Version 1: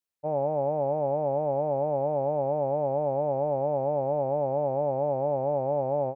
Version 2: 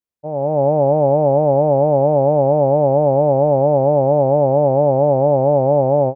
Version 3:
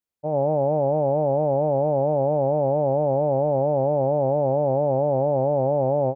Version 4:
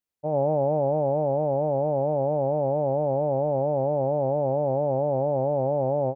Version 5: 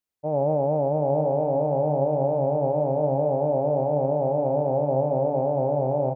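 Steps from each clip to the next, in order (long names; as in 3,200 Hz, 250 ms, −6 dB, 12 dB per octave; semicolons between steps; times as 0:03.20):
tilt shelving filter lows +5 dB, about 740 Hz; automatic gain control gain up to 12 dB
brickwall limiter −13 dBFS, peak gain reduction 8.5 dB
speech leveller within 3 dB 2 s; level −3 dB
single-tap delay 746 ms −7 dB; on a send at −11.5 dB: convolution reverb RT60 2.2 s, pre-delay 3 ms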